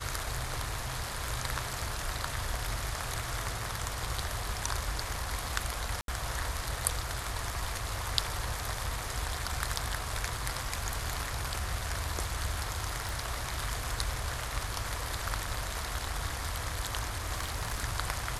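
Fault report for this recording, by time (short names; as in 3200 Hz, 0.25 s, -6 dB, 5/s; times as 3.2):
6.01–6.08 gap 72 ms
13.09 pop
17.35–17.81 clipped -27.5 dBFS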